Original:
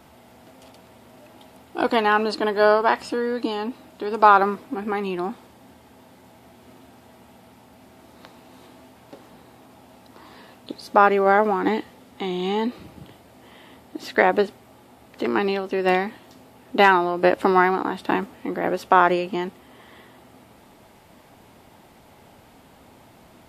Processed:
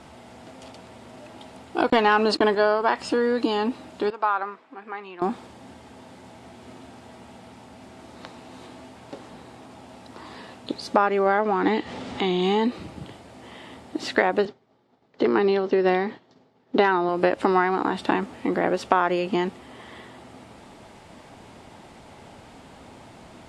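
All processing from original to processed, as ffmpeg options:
-filter_complex "[0:a]asettb=1/sr,asplit=3[a][b][c];[a]atrim=end=1.904[d];[b]atrim=start=1.9:end=2.55,asetpts=PTS-STARTPTS,afade=t=in:d=0.004:c=qsin,afade=t=out:st=0.646:d=0.004:c=qsin,agate=range=-31dB:threshold=-32dB:ratio=16:release=100:detection=peak,acontrast=53[e];[c]atrim=start=2.546[f];[d][e]acrossfade=d=0.004:c1=hsin:c2=qsin[g];[g][f]acrossfade=d=0.004:c1=qsin:c2=hsin,asettb=1/sr,asplit=3[h][i][j];[h]atrim=end=4.104[k];[i]atrim=start=4.1:end=5.22,asetpts=PTS-STARTPTS,afade=t=in:d=0.004:c=qsin,afade=t=out:st=1.116:d=0.004:c=qsin,lowpass=1.5k,aderivative,acontrast=75[l];[j]atrim=start=5.216[m];[k][l]acrossfade=d=0.004:c1=hsin:c2=qsin[n];[n][m]acrossfade=d=0.004:c1=qsin:c2=hsin,asettb=1/sr,asplit=3[o][p][q];[o]atrim=end=11.274[r];[p]atrim=start=11.27:end=12.41,asetpts=PTS-STARTPTS,afade=t=in:d=0.004:c=qsin,afade=t=out:st=1.136:d=0.004:c=qsin,lowpass=4.4k,aemphasis=mode=production:type=cd,acompressor=mode=upward:threshold=-28dB:ratio=2.5:attack=3.2:release=140:knee=2.83:detection=peak[s];[q]atrim=start=12.406[t];[r][s]acrossfade=d=0.004:c1=hsin:c2=qsin[u];[u][t]acrossfade=d=0.004:c1=qsin:c2=hsin,asettb=1/sr,asplit=3[v][w][x];[v]atrim=end=14.454[y];[w]atrim=start=14.45:end=17.09,asetpts=PTS-STARTPTS,afade=t=in:d=0.004:c=qsin,afade=t=out:st=2.636:d=0.004:c=qsin,agate=range=-33dB:threshold=-39dB:ratio=3:release=100:detection=peak,highpass=110,equalizer=f=150:t=q:w=4:g=7,equalizer=f=420:t=q:w=4:g=6,equalizer=f=2.6k:t=q:w=4:g=-5,lowpass=f=5.6k:w=0.5412,lowpass=f=5.6k:w=1.3066[z];[x]atrim=start=17.086[aa];[y][z]acrossfade=d=0.004:c1=hsin:c2=qsin[ab];[ab][aa]acrossfade=d=0.004:c1=qsin:c2=hsin,lowpass=f=9.2k:w=0.5412,lowpass=f=9.2k:w=1.3066,acompressor=threshold=-23dB:ratio=3,volume=4.5dB"

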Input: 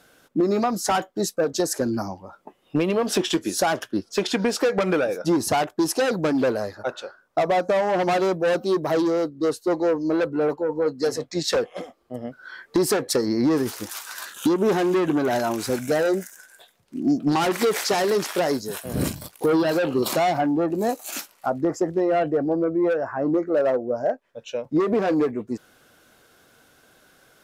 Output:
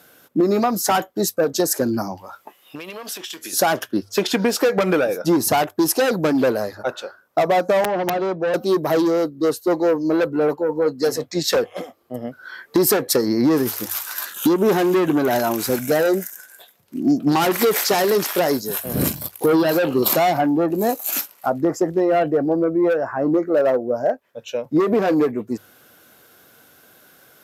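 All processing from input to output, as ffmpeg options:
-filter_complex "[0:a]asettb=1/sr,asplit=3[a][b][c];[a]atrim=end=2.174[d];[b]atrim=start=2.17:end=3.53,asetpts=PTS-STARTPTS,afade=t=in:d=0.004:c=qsin,afade=t=out:st=1.356:d=0.004:c=qsin,tiltshelf=f=680:g=-9.5,acompressor=threshold=-34dB:ratio=6:attack=3.2:release=140:knee=1:detection=peak[e];[c]atrim=start=3.526[f];[d][e]acrossfade=d=0.004:c1=hsin:c2=qsin[g];[g][f]acrossfade=d=0.004:c1=qsin:c2=hsin,asettb=1/sr,asplit=3[h][i][j];[h]atrim=end=7.844[k];[i]atrim=start=7.84:end=8.54,asetpts=PTS-STARTPTS,afade=t=in:d=0.004:c=qsin,afade=t=out:st=0.696:d=0.004:c=qsin,lowpass=4.5k,acrossover=split=150|620|1800[l][m][n][o];[l]acompressor=threshold=-47dB:ratio=3[p];[m]acompressor=threshold=-27dB:ratio=3[q];[n]acompressor=threshold=-30dB:ratio=3[r];[o]acompressor=threshold=-45dB:ratio=3[s];[p][q][r][s]amix=inputs=4:normalize=0,aeval=exprs='(mod(6.31*val(0)+1,2)-1)/6.31':c=same[t];[j]atrim=start=8.536[u];[k][t]acrossfade=d=0.004:c1=hsin:c2=qsin[v];[v][u]acrossfade=d=0.004:c1=qsin:c2=hsin,highpass=74,equalizer=f=13k:t=o:w=0.27:g=15,bandreject=f=50:t=h:w=6,bandreject=f=100:t=h:w=6,volume=3.5dB"

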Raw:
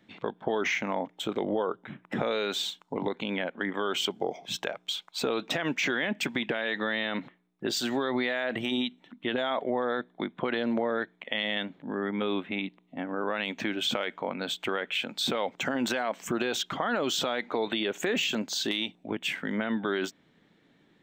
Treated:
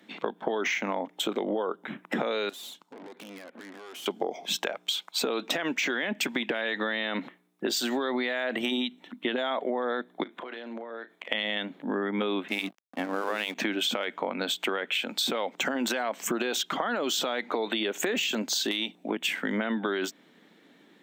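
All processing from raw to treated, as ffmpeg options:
-filter_complex "[0:a]asettb=1/sr,asplit=3[a][b][c];[a]atrim=end=2.494[d];[b]atrim=start=2.49:end=4.06,asetpts=PTS-STARTPTS,afade=t=in:d=0.004:c=qsin,afade=t=out:st=1.566:d=0.004:c=qsin,acompressor=threshold=-37dB:ratio=16:attack=3.2:release=140:knee=1:detection=peak,aeval=exprs='(tanh(224*val(0)+0.8)-tanh(0.8))/224':c=same[e];[c]atrim=start=4.056[f];[d][e]acrossfade=d=0.004:c1=hsin:c2=qsin[g];[g][f]acrossfade=d=0.004:c1=qsin:c2=hsin,asettb=1/sr,asplit=3[h][i][j];[h]atrim=end=10.234[k];[i]atrim=start=10.23:end=11.29,asetpts=PTS-STARTPTS,afade=t=in:d=0.004:c=qsin,afade=t=out:st=1.056:d=0.004:c=qsin,highpass=290,acompressor=threshold=-42dB:ratio=10:attack=3.2:release=140:knee=1:detection=peak,asplit=2[l][m];[m]adelay=35,volume=-11.5dB[n];[l][n]amix=inputs=2:normalize=0,atrim=end_sample=46746[o];[j]atrim=start=11.286[p];[k][o]acrossfade=d=0.004:c1=hsin:c2=qsin[q];[q][p]acrossfade=d=0.004:c1=qsin:c2=hsin,asettb=1/sr,asplit=3[r][s][t];[r]atrim=end=12.484[u];[s]atrim=start=12.48:end=13.55,asetpts=PTS-STARTPTS,afade=t=in:d=0.004:c=qsin,afade=t=out:st=1.066:d=0.004:c=qsin,highshelf=f=7.6k:g=11.5,bandreject=f=50:t=h:w=6,bandreject=f=100:t=h:w=6,bandreject=f=150:t=h:w=6,bandreject=f=200:t=h:w=6,bandreject=f=250:t=h:w=6,bandreject=f=300:t=h:w=6,bandreject=f=350:t=h:w=6,bandreject=f=400:t=h:w=6,aeval=exprs='sgn(val(0))*max(abs(val(0))-0.00562,0)':c=same[v];[t]atrim=start=13.546[w];[u][v]acrossfade=d=0.004:c1=hsin:c2=qsin[x];[x][w]acrossfade=d=0.004:c1=qsin:c2=hsin,highpass=f=200:w=0.5412,highpass=f=200:w=1.3066,equalizer=f=13k:w=0.6:g=6,acompressor=threshold=-32dB:ratio=6,volume=6.5dB"

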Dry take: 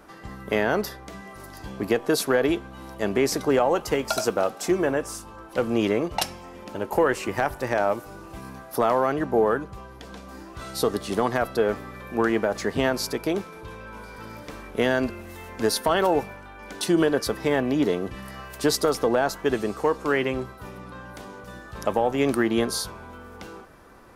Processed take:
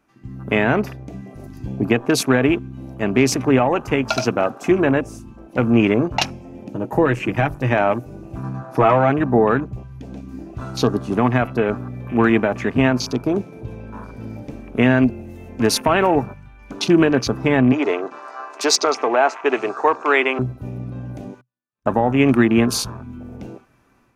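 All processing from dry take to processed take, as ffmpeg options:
-filter_complex "[0:a]asettb=1/sr,asplit=3[a][b][c];[a]atrim=end=6.684[d];[b]atrim=start=6.68:end=7.71,asetpts=PTS-STARTPTS,afade=t=in:d=0.004:c=qsin,afade=t=out:st=1.026:d=0.004:c=qsin,equalizer=f=1.2k:t=o:w=2:g=-5,aecho=1:1:6.3:0.48,atrim=end_sample=45423[e];[c]atrim=start=7.706[f];[d][e]acrossfade=d=0.004:c1=hsin:c2=qsin[g];[g][f]acrossfade=d=0.004:c1=qsin:c2=hsin,asettb=1/sr,asplit=3[h][i][j];[h]atrim=end=8.434[k];[i]atrim=start=8.43:end=9.1,asetpts=PTS-STARTPTS,afade=t=in:d=0.004:c=qsin,afade=t=out:st=0.666:d=0.004:c=qsin,lowpass=8.2k,aecho=1:1:6.2:0.74,atrim=end_sample=29547[l];[j]atrim=start=9.096[m];[k][l]acrossfade=d=0.004:c1=hsin:c2=qsin[n];[n][m]acrossfade=d=0.004:c1=qsin:c2=hsin,asettb=1/sr,asplit=3[o][p][q];[o]atrim=end=17.724[r];[p]atrim=start=17.72:end=20.39,asetpts=PTS-STARTPTS,afade=t=in:d=0.004:c=qsin,afade=t=out:st=2.666:d=0.004:c=qsin,highpass=f=420:w=0.5412,highpass=f=420:w=1.3066,equalizer=f=510:t=q:w=4:g=-6,equalizer=f=1.7k:t=q:w=4:g=-5,equalizer=f=3k:t=q:w=4:g=-7,lowpass=f=7.5k:w=0.5412,lowpass=f=7.5k:w=1.3066,acontrast=32[s];[q]atrim=start=20.386[t];[r][s]acrossfade=d=0.004:c1=hsin:c2=qsin[u];[u][t]acrossfade=d=0.004:c1=qsin:c2=hsin,asettb=1/sr,asplit=3[v][w][x];[v]atrim=end=21.414[y];[w]atrim=start=21.41:end=21.86,asetpts=PTS-STARTPTS,afade=t=in:d=0.004:c=qsin,afade=t=out:st=0.446:d=0.004:c=qsin,highpass=190,lowpass=7.5k,agate=range=-44dB:threshold=-34dB:ratio=16:release=100:detection=peak[z];[x]atrim=start=21.856[aa];[y][z]acrossfade=d=0.004:c1=hsin:c2=qsin[ab];[ab][aa]acrossfade=d=0.004:c1=qsin:c2=hsin,afwtdn=0.0178,equalizer=f=125:t=o:w=0.33:g=12,equalizer=f=250:t=o:w=0.33:g=8,equalizer=f=500:t=o:w=0.33:g=-5,equalizer=f=2.5k:t=o:w=0.33:g=9,equalizer=f=6.3k:t=o:w=0.33:g=5,dynaudnorm=f=270:g=3:m=7dB"

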